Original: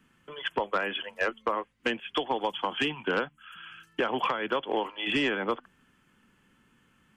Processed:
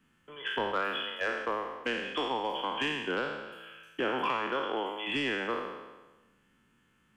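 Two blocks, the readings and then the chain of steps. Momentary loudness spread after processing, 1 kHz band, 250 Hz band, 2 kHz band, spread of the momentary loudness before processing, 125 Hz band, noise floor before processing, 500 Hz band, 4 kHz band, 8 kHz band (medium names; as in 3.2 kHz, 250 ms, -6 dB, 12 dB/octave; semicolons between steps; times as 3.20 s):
12 LU, -2.0 dB, -3.5 dB, -2.0 dB, 10 LU, -3.0 dB, -66 dBFS, -3.0 dB, -2.0 dB, no reading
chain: spectral sustain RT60 1.19 s; trim -6.5 dB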